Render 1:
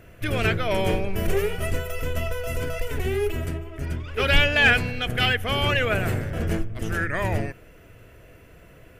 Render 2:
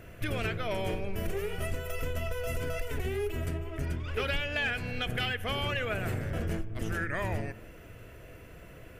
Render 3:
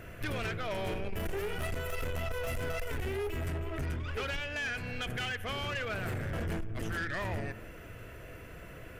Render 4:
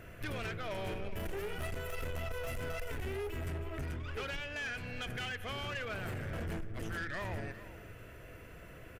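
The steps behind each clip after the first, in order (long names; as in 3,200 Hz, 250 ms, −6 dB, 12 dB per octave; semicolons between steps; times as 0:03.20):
downward compressor 6 to 1, threshold −29 dBFS, peak gain reduction 16 dB; on a send at −17.5 dB: convolution reverb RT60 1.1 s, pre-delay 44 ms
parametric band 1,500 Hz +3.5 dB 1.2 octaves; speech leveller 0.5 s; soft clipping −30 dBFS, distortion −11 dB
single-tap delay 409 ms −15.5 dB; level −4 dB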